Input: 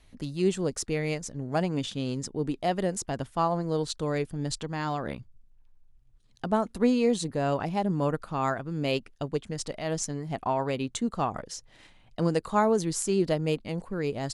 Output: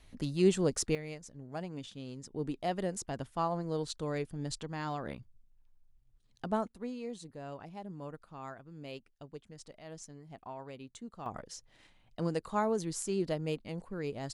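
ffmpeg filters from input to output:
-af "asetnsamples=n=441:p=0,asendcmd='0.95 volume volume -13dB;2.31 volume volume -6.5dB;6.68 volume volume -17dB;11.26 volume volume -7.5dB',volume=0.944"

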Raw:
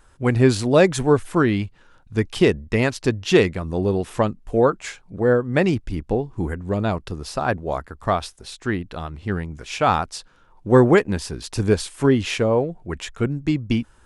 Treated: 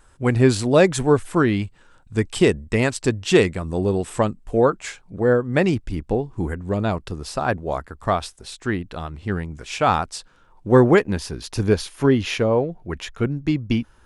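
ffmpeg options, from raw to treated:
-af "asetnsamples=n=441:p=0,asendcmd='1.62 equalizer g 12.5;4.44 equalizer g 3.5;10.69 equalizer g -5.5;11.63 equalizer g -12.5',equalizer=f=8000:t=o:w=0.21:g=4.5"

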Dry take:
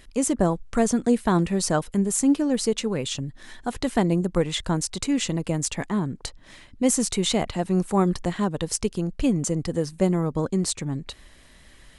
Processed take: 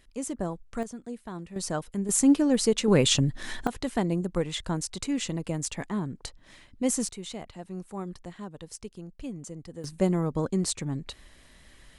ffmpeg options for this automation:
-af "asetnsamples=n=441:p=0,asendcmd='0.83 volume volume -18dB;1.56 volume volume -8dB;2.09 volume volume 0dB;2.88 volume volume 7dB;3.67 volume volume -5.5dB;7.09 volume volume -15.5dB;9.84 volume volume -3dB',volume=0.299"

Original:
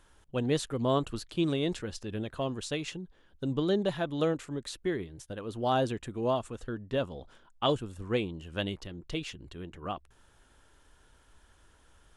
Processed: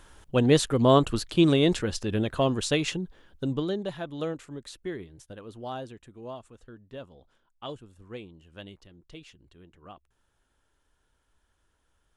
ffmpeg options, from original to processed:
-af "volume=2.66,afade=t=out:st=3.03:d=0.72:silence=0.251189,afade=t=out:st=5.3:d=0.55:silence=0.421697"

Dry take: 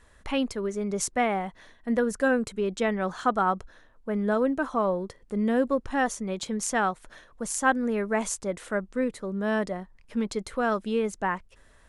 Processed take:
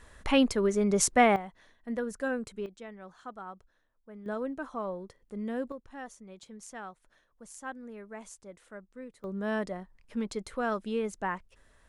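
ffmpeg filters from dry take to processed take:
-af "asetnsamples=n=441:p=0,asendcmd='1.36 volume volume -8.5dB;2.66 volume volume -19dB;4.26 volume volume -10dB;5.72 volume volume -17.5dB;9.24 volume volume -5dB',volume=1.5"

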